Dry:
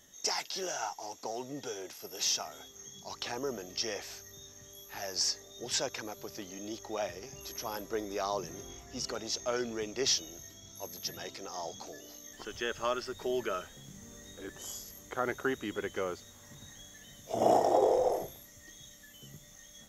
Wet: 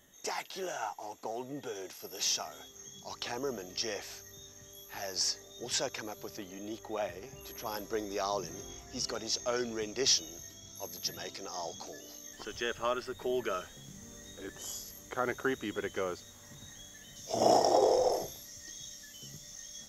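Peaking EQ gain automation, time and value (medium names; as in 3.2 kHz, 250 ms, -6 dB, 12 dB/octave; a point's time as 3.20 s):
peaking EQ 5.2 kHz 0.73 oct
-11 dB
from 1.75 s -1 dB
from 6.37 s -8.5 dB
from 7.66 s +2.5 dB
from 12.74 s -5.5 dB
from 13.45 s +2.5 dB
from 17.16 s +13 dB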